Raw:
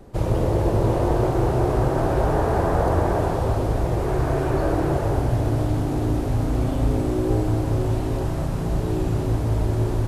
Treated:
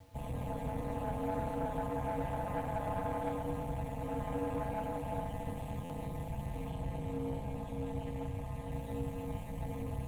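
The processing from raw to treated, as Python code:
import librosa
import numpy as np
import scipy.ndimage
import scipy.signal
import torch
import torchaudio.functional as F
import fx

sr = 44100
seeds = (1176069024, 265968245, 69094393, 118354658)

y = fx.peak_eq(x, sr, hz=250.0, db=14.0, octaves=0.27)
y = fx.comb_fb(y, sr, f0_hz=380.0, decay_s=0.17, harmonics='all', damping=0.0, mix_pct=100)
y = fx.echo_heads(y, sr, ms=60, heads='first and third', feedback_pct=75, wet_db=-18.5)
y = y * np.sin(2.0 * np.pi * 99.0 * np.arange(len(y)) / sr)
y = fx.fixed_phaser(y, sr, hz=1400.0, stages=6)
y = fx.tube_stage(y, sr, drive_db=34.0, bias=0.35)
y = fx.quant_dither(y, sr, seeds[0], bits=12, dither='none')
y = fx.high_shelf(y, sr, hz=9800.0, db=-7.0, at=(6.7, 8.72))
y = fx.buffer_glitch(y, sr, at_s=(5.84,), block=512, repeats=4)
y = y * 10.0 ** (6.0 / 20.0)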